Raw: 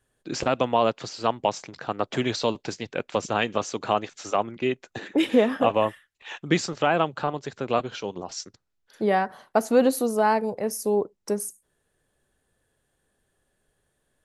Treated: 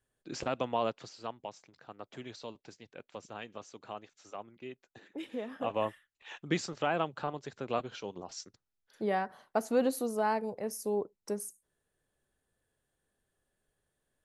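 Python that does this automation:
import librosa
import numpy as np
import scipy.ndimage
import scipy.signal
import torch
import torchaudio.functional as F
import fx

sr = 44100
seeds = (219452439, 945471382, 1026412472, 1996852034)

y = fx.gain(x, sr, db=fx.line((0.87, -10.0), (1.5, -19.5), (5.42, -19.5), (5.82, -9.0)))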